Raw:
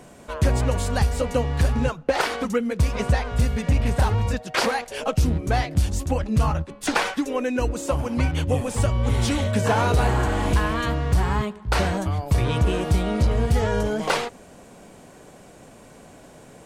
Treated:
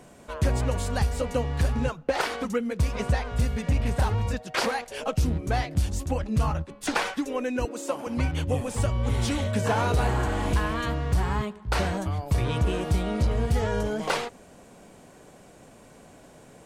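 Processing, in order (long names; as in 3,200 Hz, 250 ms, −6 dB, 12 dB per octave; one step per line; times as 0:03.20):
0:07.65–0:08.07: high-pass filter 230 Hz 24 dB per octave
level −4 dB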